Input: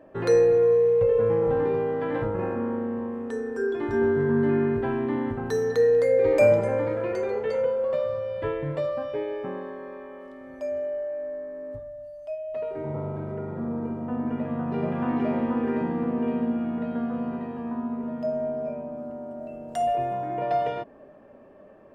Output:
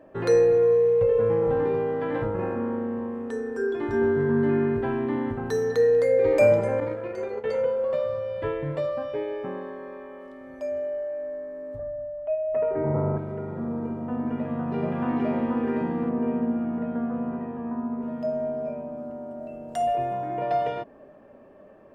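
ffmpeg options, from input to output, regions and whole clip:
-filter_complex "[0:a]asettb=1/sr,asplit=3[s0][s1][s2];[s0]atrim=end=6.804[s3];[s1]atrim=start=6.8:end=7.44,asetpts=PTS-STARTPTS,afade=t=in:d=0.004:c=qsin,afade=t=out:st=0.636:d=0.004:c=qsin,acontrast=75,agate=range=0.0224:threshold=0.224:ratio=3:release=100:detection=peak[s4];[s2]atrim=start=7.436[s5];[s3][s4]acrossfade=d=0.004:c1=hsin:c2=qsin[s6];[s6][s5]acrossfade=d=0.004:c1=qsin:c2=hsin,asettb=1/sr,asplit=3[s7][s8][s9];[s7]atrim=end=11.794[s10];[s8]atrim=start=11.79:end=13.18,asetpts=PTS-STARTPTS,afade=t=in:d=0.004:c=qsin,afade=t=out:st=1.386:d=0.004:c=qsin,lowpass=f=2100:w=0.5412,lowpass=f=2100:w=1.3066,acontrast=67[s11];[s9]atrim=start=13.176[s12];[s10][s11]acrossfade=d=0.004:c1=hsin:c2=qsin[s13];[s13][s12]acrossfade=d=0.004:c1=qsin:c2=hsin,asettb=1/sr,asplit=3[s14][s15][s16];[s14]atrim=end=16.094[s17];[s15]atrim=start=16.09:end=18.02,asetpts=PTS-STARTPTS,afade=t=in:d=0.004:c=qsin,afade=t=out:st=1.926:d=0.004:c=qsin,lowpass=2300,aemphasis=mode=reproduction:type=50fm[s18];[s16]atrim=start=18.016[s19];[s17][s18]acrossfade=d=0.004:c1=hsin:c2=qsin[s20];[s20][s19]acrossfade=d=0.004:c1=qsin:c2=hsin"

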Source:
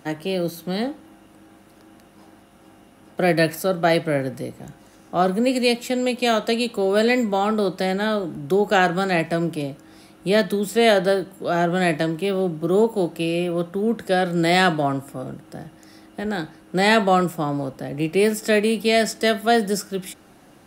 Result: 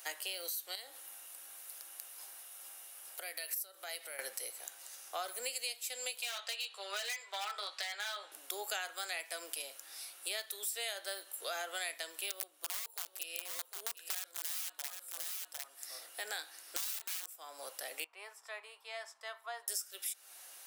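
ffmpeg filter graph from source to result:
-filter_complex "[0:a]asettb=1/sr,asplit=3[s0][s1][s2];[s0]atrim=end=0.754[s3];[s1]atrim=start=0.75:end=4.19,asetpts=PTS-STARTPTS,afade=t=in:d=0.004:c=qsin,afade=t=out:st=3.436:d=0.004:c=qsin,equalizer=f=13000:t=o:w=1:g=6,acompressor=threshold=0.02:ratio=4:attack=3.2:release=140:knee=1:detection=peak[s4];[s2]atrim=start=4.186[s5];[s3][s4]acrossfade=d=0.004:c1=hsin:c2=qsin[s6];[s6][s5]acrossfade=d=0.004:c1=qsin:c2=hsin,asettb=1/sr,asplit=3[s7][s8][s9];[s7]atrim=end=6.224[s10];[s8]atrim=start=6.22:end=8.32,asetpts=PTS-STARTPTS,afade=t=in:d=0.004:c=qsin,afade=t=out:st=2.096:d=0.004:c=qsin,highpass=760,lowpass=4000,asplit=2[s11][s12];[s12]adelay=15,volume=0.596[s13];[s11][s13]amix=inputs=2:normalize=0,atrim=end_sample=92610,asoftclip=type=hard:threshold=0.0891[s14];[s9]atrim=start=8.316[s15];[s10][s14]acrossfade=d=0.004:c1=hsin:c2=qsin[s16];[s16][s15]acrossfade=d=0.004:c1=qsin:c2=hsin,asettb=1/sr,asplit=3[s17][s18][s19];[s17]atrim=end=12.304[s20];[s18]atrim=start=12.3:end=17.37,asetpts=PTS-STARTPTS,afade=t=in:d=0.004:c=qsin,afade=t=out:st=5.066:d=0.004:c=qsin,aeval=exprs='(mod(5.01*val(0)+1,2)-1)/5.01':c=same,aecho=1:1:754:0.266,atrim=end_sample=223587[s21];[s19]atrim=start=17.366[s22];[s20][s21]acrossfade=d=0.004:c1=hsin:c2=qsin[s23];[s23][s22]acrossfade=d=0.004:c1=qsin:c2=hsin,asettb=1/sr,asplit=3[s24][s25][s26];[s24]atrim=end=18.044[s27];[s25]atrim=start=18.04:end=19.68,asetpts=PTS-STARTPTS,afade=t=in:d=0.004:c=qsin,afade=t=out:st=1.636:d=0.004:c=qsin,bandpass=f=1000:t=q:w=5.9,aeval=exprs='val(0)+0.00562*(sin(2*PI*50*n/s)+sin(2*PI*2*50*n/s)/2+sin(2*PI*3*50*n/s)/3+sin(2*PI*4*50*n/s)/4+sin(2*PI*5*50*n/s)/5)':c=same[s28];[s26]atrim=start=19.676[s29];[s27][s28]acrossfade=d=0.004:c1=hsin:c2=qsin[s30];[s30][s29]acrossfade=d=0.004:c1=qsin:c2=hsin,highpass=f=460:w=0.5412,highpass=f=460:w=1.3066,aderivative,acompressor=threshold=0.00562:ratio=6,volume=2.51"

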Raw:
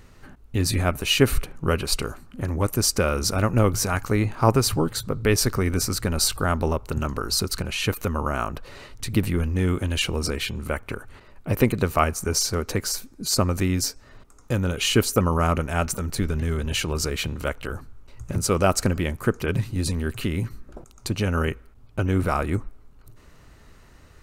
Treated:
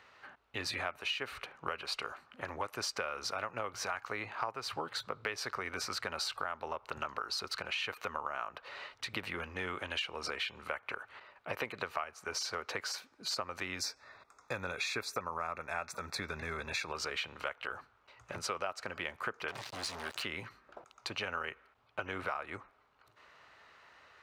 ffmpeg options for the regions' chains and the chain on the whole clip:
-filter_complex "[0:a]asettb=1/sr,asplit=3[s0][s1][s2];[s0]atrim=end=13.794[s3];[s1]atrim=start=13.79:end=16.92,asetpts=PTS-STARTPTS,afade=t=in:d=0.004:c=qsin,afade=t=out:st=3.126:d=0.004:c=qsin,asuperstop=centerf=3000:order=12:qfactor=4.9,bass=f=250:g=4,treble=f=4000:g=4[s4];[s2]atrim=start=16.916[s5];[s3][s4]acrossfade=d=0.004:c1=hsin:c2=qsin[s6];[s6][s5]acrossfade=d=0.004:c1=qsin:c2=hsin,asettb=1/sr,asplit=3[s7][s8][s9];[s7]atrim=end=19.484[s10];[s8]atrim=start=19.48:end=20.23,asetpts=PTS-STARTPTS,afade=t=in:d=0.004:c=qsin,afade=t=out:st=0.746:d=0.004:c=qsin,highshelf=f=3800:t=q:w=1.5:g=11.5,acompressor=threshold=0.0501:ratio=2.5:attack=3.2:release=140:knee=1:detection=peak,acrusher=bits=4:mix=0:aa=0.5[s11];[s9]atrim=start=20.226[s12];[s10][s11]acrossfade=d=0.004:c1=hsin:c2=qsin[s13];[s13][s12]acrossfade=d=0.004:c1=qsin:c2=hsin,highpass=83,acrossover=split=590 4400:gain=0.0708 1 0.0794[s14][s15][s16];[s14][s15][s16]amix=inputs=3:normalize=0,acompressor=threshold=0.0224:ratio=12"

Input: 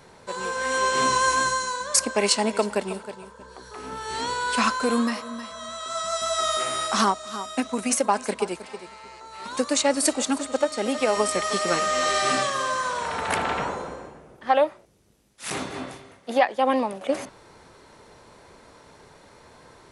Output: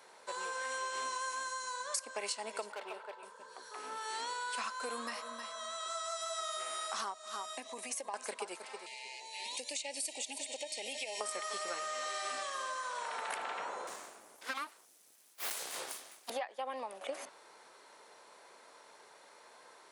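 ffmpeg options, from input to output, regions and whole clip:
-filter_complex "[0:a]asettb=1/sr,asplit=3[s0][s1][s2];[s0]atrim=end=2.724[s3];[s1]atrim=start=2.72:end=3.23,asetpts=PTS-STARTPTS,afade=t=in:d=0.004:c=qsin,afade=t=out:st=0.506:d=0.004:c=qsin,acrossover=split=320 3700:gain=0.0891 1 0.112[s4][s5][s6];[s4][s5][s6]amix=inputs=3:normalize=0,asoftclip=type=hard:threshold=0.0355[s7];[s2]atrim=start=3.226[s8];[s3][s7]acrossfade=d=0.004:c1=hsin:c2=qsin[s9];[s9][s8]acrossfade=d=0.004:c1=qsin:c2=hsin,asettb=1/sr,asplit=3[s10][s11][s12];[s10]atrim=end=7.534[s13];[s11]atrim=start=7.53:end=8.14,asetpts=PTS-STARTPTS,afade=t=in:d=0.004:c=qsin,afade=t=out:st=0.606:d=0.004:c=qsin,acompressor=threshold=0.0282:ratio=3:attack=3.2:release=140:knee=1:detection=peak,asuperstop=centerf=1400:order=4:qfactor=3.4[s14];[s12]atrim=start=8.136[s15];[s13][s14]acrossfade=d=0.004:c1=hsin:c2=qsin[s16];[s16][s15]acrossfade=d=0.004:c1=qsin:c2=hsin,asettb=1/sr,asplit=3[s17][s18][s19];[s17]atrim=end=8.864[s20];[s18]atrim=start=8.86:end=11.21,asetpts=PTS-STARTPTS,afade=t=in:d=0.004:c=qsin,afade=t=out:st=2.346:d=0.004:c=qsin,asuperstop=centerf=1300:order=20:qfactor=1.9,highshelf=f=2000:t=q:w=3:g=6,acompressor=threshold=0.0251:ratio=3:attack=3.2:release=140:knee=1:detection=peak[s21];[s19]atrim=start=11.206[s22];[s20][s21]acrossfade=d=0.004:c1=hsin:c2=qsin[s23];[s23][s22]acrossfade=d=0.004:c1=qsin:c2=hsin,asettb=1/sr,asplit=3[s24][s25][s26];[s24]atrim=end=13.874[s27];[s25]atrim=start=13.87:end=16.3,asetpts=PTS-STARTPTS,afade=t=in:d=0.004:c=qsin,afade=t=out:st=2.426:d=0.004:c=qsin,bass=f=250:g=10,treble=f=4000:g=15,aeval=exprs='abs(val(0))':c=same[s28];[s26]atrim=start=16.296[s29];[s27][s28]acrossfade=d=0.004:c1=hsin:c2=qsin[s30];[s30][s29]acrossfade=d=0.004:c1=qsin:c2=hsin,highpass=550,acompressor=threshold=0.0282:ratio=6,equalizer=f=10000:w=1.3:g=3,volume=0.531"

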